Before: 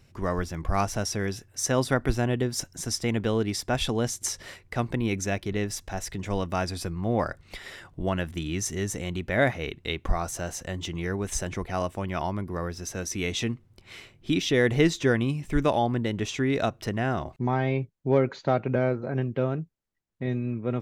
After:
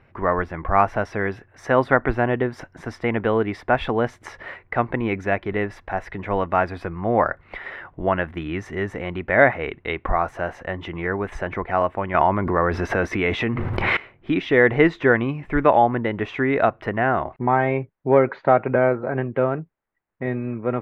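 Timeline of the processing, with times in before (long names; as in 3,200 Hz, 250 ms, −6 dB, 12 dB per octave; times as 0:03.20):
0:12.14–0:13.97: envelope flattener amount 100%
whole clip: drawn EQ curve 160 Hz 0 dB, 910 Hz +11 dB, 2,000 Hz +9 dB, 6,700 Hz −24 dB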